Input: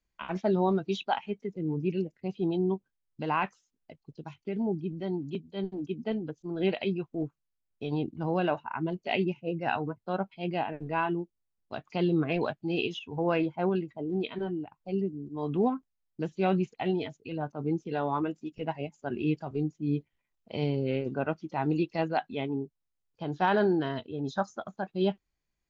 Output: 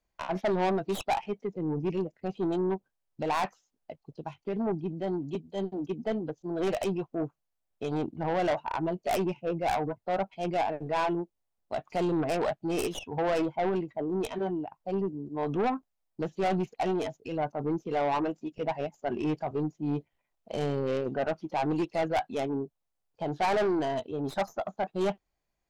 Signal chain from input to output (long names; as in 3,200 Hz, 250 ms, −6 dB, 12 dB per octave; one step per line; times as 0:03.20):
stylus tracing distortion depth 0.39 ms
parametric band 690 Hz +10 dB 1.2 octaves
soft clipping −23 dBFS, distortion −9 dB